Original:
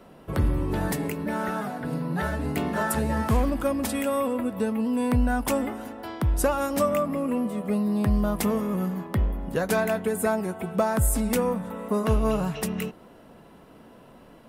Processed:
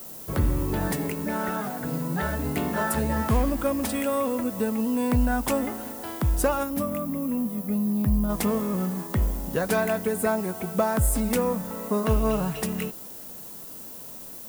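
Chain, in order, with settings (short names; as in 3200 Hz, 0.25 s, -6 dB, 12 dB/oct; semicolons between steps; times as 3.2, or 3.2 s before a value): added noise violet -41 dBFS; spectral gain 6.63–8.29, 320–9700 Hz -8 dB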